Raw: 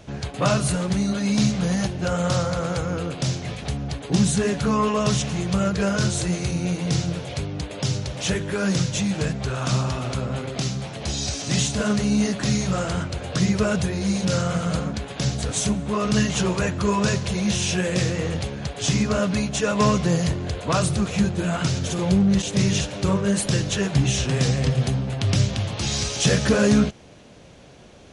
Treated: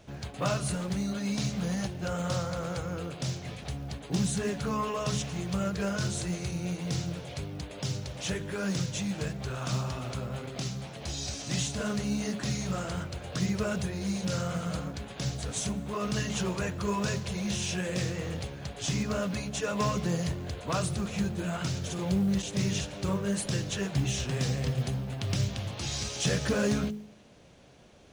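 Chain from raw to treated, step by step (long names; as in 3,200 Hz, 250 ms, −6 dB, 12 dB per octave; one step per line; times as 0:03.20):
hum removal 52.72 Hz, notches 10
floating-point word with a short mantissa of 4 bits
level −8.5 dB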